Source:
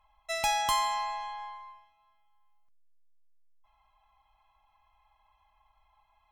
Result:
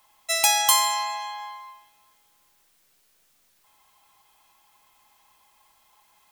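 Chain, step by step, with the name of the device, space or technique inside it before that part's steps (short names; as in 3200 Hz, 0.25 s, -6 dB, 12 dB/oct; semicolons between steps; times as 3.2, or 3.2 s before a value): turntable without a phono preamp (RIAA curve recording; white noise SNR 35 dB); gain +4.5 dB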